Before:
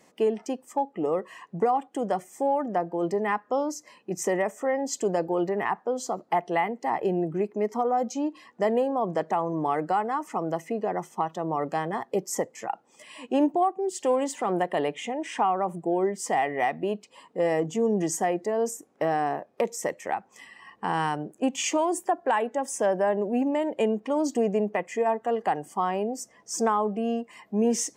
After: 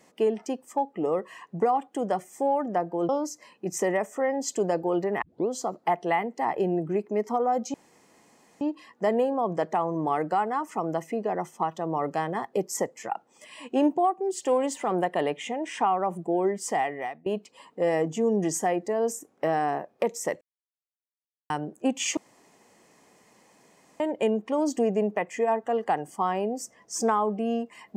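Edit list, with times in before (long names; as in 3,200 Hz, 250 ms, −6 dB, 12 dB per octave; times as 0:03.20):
0:03.09–0:03.54: remove
0:05.67: tape start 0.28 s
0:08.19: splice in room tone 0.87 s
0:16.28–0:16.84: fade out, to −23.5 dB
0:19.99–0:21.08: silence
0:21.75–0:23.58: fill with room tone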